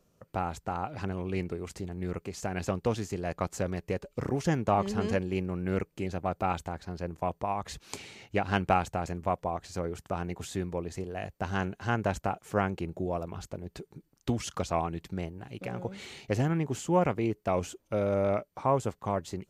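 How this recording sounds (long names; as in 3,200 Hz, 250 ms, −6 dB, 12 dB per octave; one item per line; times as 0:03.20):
background noise floor −72 dBFS
spectral slope −6.0 dB per octave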